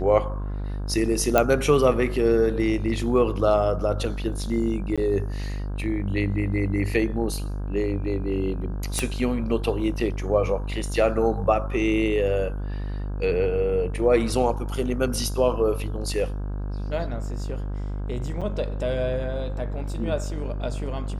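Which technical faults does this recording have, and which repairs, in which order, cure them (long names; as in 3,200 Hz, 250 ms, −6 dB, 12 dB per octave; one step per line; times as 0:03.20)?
mains buzz 50 Hz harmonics 33 −29 dBFS
0:01.38: click −5 dBFS
0:04.96–0:04.98: drop-out 16 ms
0:08.99: click −10 dBFS
0:18.41–0:18.42: drop-out 6.4 ms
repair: click removal
hum removal 50 Hz, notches 33
repair the gap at 0:04.96, 16 ms
repair the gap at 0:18.41, 6.4 ms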